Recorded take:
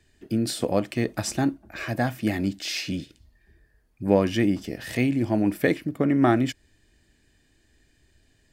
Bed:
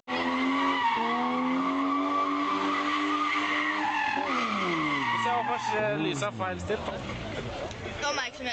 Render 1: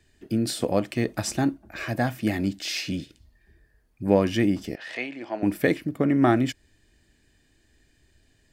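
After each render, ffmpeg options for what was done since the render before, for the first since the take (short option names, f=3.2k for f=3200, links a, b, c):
-filter_complex "[0:a]asettb=1/sr,asplit=3[a][b][c];[a]atrim=end=4.754[d];[b]atrim=start=4.75:end=5.43,asetpts=PTS-STARTPTS,afade=t=in:d=0.004:c=qsin,afade=t=out:st=0.676:d=0.004:c=qsin,highpass=610,lowpass=3.9k[e];[c]atrim=start=5.426[f];[d][e]acrossfade=d=0.004:c1=hsin:c2=qsin[g];[g][f]acrossfade=d=0.004:c1=qsin:c2=hsin"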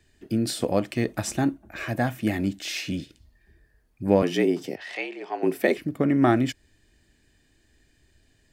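-filter_complex "[0:a]asettb=1/sr,asplit=3[a][b][c];[a]atrim=end=1.124[d];[b]atrim=start=1.12:end=2.97,asetpts=PTS-STARTPTS,afade=t=in:d=0.004:c=qsin,afade=t=out:st=1.846:d=0.004:c=qsin,equalizer=f=4.8k:t=o:w=0.35:g=-5.5[e];[c]atrim=start=2.966[f];[d][e]acrossfade=d=0.004:c1=hsin:c2=qsin[g];[g][f]acrossfade=d=0.004:c1=qsin:c2=hsin,asettb=1/sr,asplit=3[h][i][j];[h]atrim=end=4.224[k];[i]atrim=start=4.22:end=5.78,asetpts=PTS-STARTPTS,afade=t=in:d=0.004:c=qsin,afade=t=out:st=1.556:d=0.004:c=qsin,afreqshift=75[l];[j]atrim=start=5.776[m];[k][l]acrossfade=d=0.004:c1=hsin:c2=qsin[n];[n][m]acrossfade=d=0.004:c1=qsin:c2=hsin"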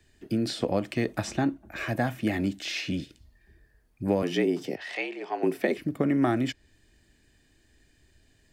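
-filter_complex "[0:a]acrossover=split=280|5800[a][b][c];[a]acompressor=threshold=-28dB:ratio=4[d];[b]acompressor=threshold=-24dB:ratio=4[e];[c]acompressor=threshold=-54dB:ratio=4[f];[d][e][f]amix=inputs=3:normalize=0"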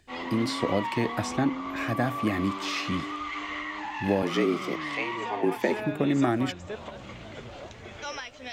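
-filter_complex "[1:a]volume=-7dB[a];[0:a][a]amix=inputs=2:normalize=0"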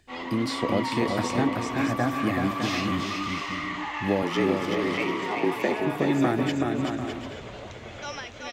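-af "aecho=1:1:380|608|744.8|826.9|876.1:0.631|0.398|0.251|0.158|0.1"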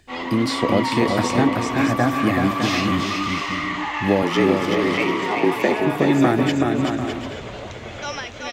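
-af "volume=6.5dB"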